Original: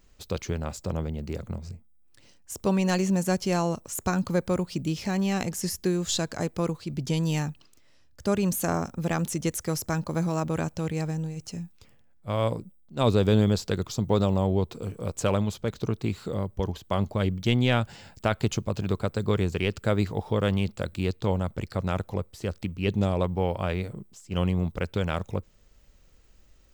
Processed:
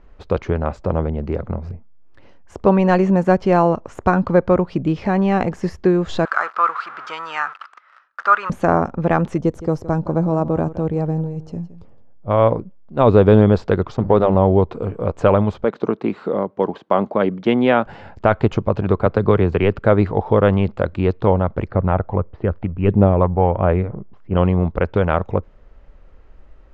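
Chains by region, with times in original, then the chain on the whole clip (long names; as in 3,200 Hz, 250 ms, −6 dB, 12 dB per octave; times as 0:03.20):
0:06.25–0:08.50: converter with a step at zero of −37 dBFS + high-pass with resonance 1,300 Hz, resonance Q 6.7
0:09.39–0:12.31: parametric band 2,000 Hz −13 dB 1.8 octaves + single-tap delay 166 ms −15.5 dB
0:13.94–0:14.35: mains-hum notches 50/100/150/200/250/300/350 Hz + slack as between gear wheels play −38.5 dBFS
0:15.64–0:17.86: high-pass filter 180 Hz 24 dB per octave + high-shelf EQ 11,000 Hz −4.5 dB
0:19.06–0:19.79: low-pass filter 5,700 Hz + multiband upward and downward compressor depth 40%
0:21.69–0:24.37: phase shifter 1.5 Hz, delay 1.6 ms, feedback 30% + high-frequency loss of the air 380 metres
whole clip: low-pass filter 1,300 Hz 12 dB per octave; parametric band 140 Hz −7.5 dB 2.6 octaves; boost into a limiter +16 dB; level −1 dB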